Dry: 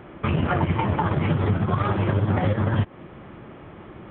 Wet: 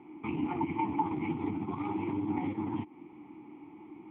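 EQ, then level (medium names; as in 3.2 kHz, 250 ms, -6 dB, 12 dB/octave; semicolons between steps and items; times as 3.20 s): vowel filter u; +2.5 dB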